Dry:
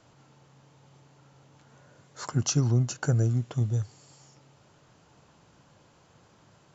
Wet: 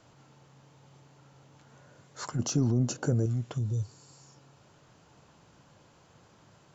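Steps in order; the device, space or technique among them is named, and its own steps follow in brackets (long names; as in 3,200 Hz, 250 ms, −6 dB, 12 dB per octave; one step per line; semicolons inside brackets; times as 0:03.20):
0:03.60–0:04.53: healed spectral selection 570–3,500 Hz after
soft clipper into limiter (soft clipping −14 dBFS, distortion −23 dB; brickwall limiter −23.5 dBFS, peak gain reduction 7.5 dB)
0:02.39–0:03.26: graphic EQ with 10 bands 250 Hz +10 dB, 500 Hz +7 dB, 2,000 Hz −3 dB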